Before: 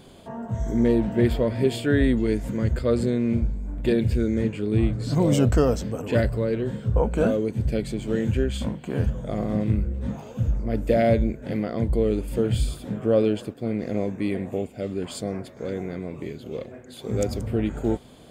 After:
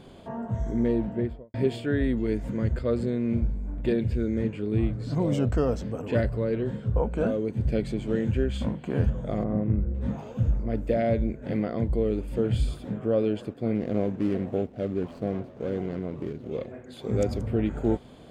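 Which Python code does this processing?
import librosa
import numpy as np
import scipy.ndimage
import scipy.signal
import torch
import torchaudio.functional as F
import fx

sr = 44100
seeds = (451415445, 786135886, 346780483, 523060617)

y = fx.studio_fade_out(x, sr, start_s=0.88, length_s=0.66)
y = fx.lowpass(y, sr, hz=1400.0, slope=12, at=(9.43, 9.93), fade=0.02)
y = fx.median_filter(y, sr, points=25, at=(13.75, 16.51))
y = fx.lowpass(y, sr, hz=2900.0, slope=6)
y = fx.rider(y, sr, range_db=3, speed_s=0.5)
y = F.gain(torch.from_numpy(y), -2.5).numpy()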